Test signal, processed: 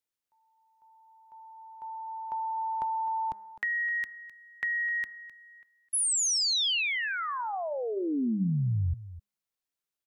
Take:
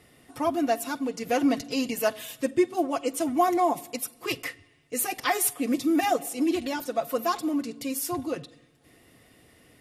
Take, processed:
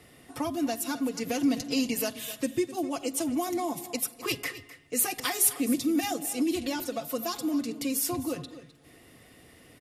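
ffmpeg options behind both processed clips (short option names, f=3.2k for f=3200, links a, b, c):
-filter_complex "[0:a]bandreject=f=205.8:t=h:w=4,bandreject=f=411.6:t=h:w=4,bandreject=f=617.4:t=h:w=4,bandreject=f=823.2:t=h:w=4,bandreject=f=1.029k:t=h:w=4,bandreject=f=1.2348k:t=h:w=4,bandreject=f=1.4406k:t=h:w=4,bandreject=f=1.6464k:t=h:w=4,bandreject=f=1.8522k:t=h:w=4,bandreject=f=2.058k:t=h:w=4,acrossover=split=260|3000[a][b][c];[b]acompressor=threshold=-34dB:ratio=10[d];[a][d][c]amix=inputs=3:normalize=0,aecho=1:1:257:0.168,volume=2.5dB"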